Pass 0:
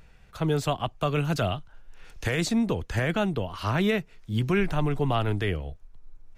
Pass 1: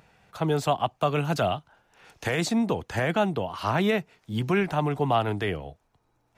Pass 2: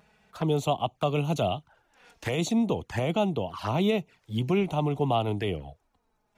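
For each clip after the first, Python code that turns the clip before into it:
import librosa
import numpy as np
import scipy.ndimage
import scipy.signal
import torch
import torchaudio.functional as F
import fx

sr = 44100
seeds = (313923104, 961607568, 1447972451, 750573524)

y1 = scipy.signal.sosfilt(scipy.signal.butter(2, 120.0, 'highpass', fs=sr, output='sos'), x)
y1 = fx.peak_eq(y1, sr, hz=800.0, db=6.5, octaves=0.81)
y2 = fx.env_flanger(y1, sr, rest_ms=5.0, full_db=-24.0)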